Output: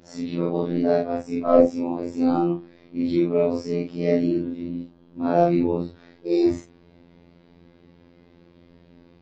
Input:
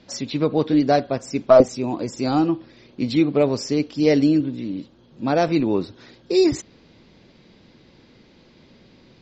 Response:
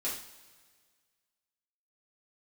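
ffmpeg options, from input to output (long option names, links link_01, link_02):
-filter_complex "[0:a]afftfilt=real='re':imag='-im':win_size=4096:overlap=0.75,lowpass=frequency=1200:poles=1,afftfilt=real='hypot(re,im)*cos(PI*b)':imag='0':win_size=2048:overlap=0.75,asplit=2[link_01][link_02];[link_02]asoftclip=type=tanh:threshold=-19dB,volume=-8dB[link_03];[link_01][link_03]amix=inputs=2:normalize=0,volume=4.5dB"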